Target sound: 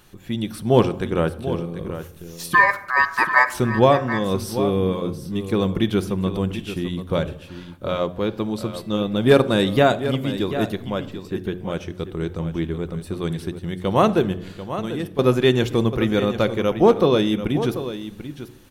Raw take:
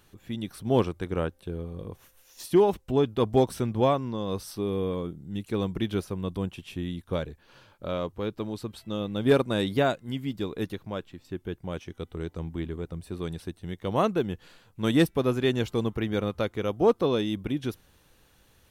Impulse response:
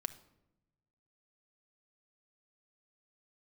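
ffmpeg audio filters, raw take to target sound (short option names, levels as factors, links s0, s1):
-filter_complex "[0:a]bandreject=f=90:t=h:w=4,bandreject=f=180:t=h:w=4,bandreject=f=270:t=h:w=4,bandreject=f=360:t=h:w=4,bandreject=f=450:t=h:w=4,bandreject=f=540:t=h:w=4,bandreject=f=630:t=h:w=4,bandreject=f=720:t=h:w=4,bandreject=f=810:t=h:w=4,asplit=3[s0][s1][s2];[s0]afade=t=out:st=2.53:d=0.02[s3];[s1]aeval=exprs='val(0)*sin(2*PI*1400*n/s)':c=same,afade=t=in:st=2.53:d=0.02,afade=t=out:st=3.53:d=0.02[s4];[s2]afade=t=in:st=3.53:d=0.02[s5];[s3][s4][s5]amix=inputs=3:normalize=0,asettb=1/sr,asplit=3[s6][s7][s8];[s6]atrim=end=14.334[s9];[s7]atrim=start=14.33:end=15.19,asetpts=PTS-STARTPTS,afade=t=in:d=0.004:c=qsin,afade=t=out:st=0.856:d=0.004:c=qsin,acompressor=threshold=0.0112:ratio=3[s10];[s8]atrim=start=15.186[s11];[s9][s10]acrossfade=d=0.004:c1=hsin:c2=qsin[s12];[s12][s11]acrossfade=d=0.004:c1=qsin:c2=hsin,aecho=1:1:740:0.266,asplit=2[s13][s14];[1:a]atrim=start_sample=2205[s15];[s14][s15]afir=irnorm=-1:irlink=0,volume=2.82[s16];[s13][s16]amix=inputs=2:normalize=0,volume=0.708"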